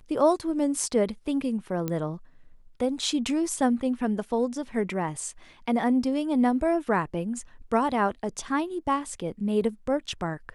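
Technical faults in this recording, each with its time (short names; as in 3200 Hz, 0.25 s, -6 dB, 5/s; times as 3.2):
1.88 pop -16 dBFS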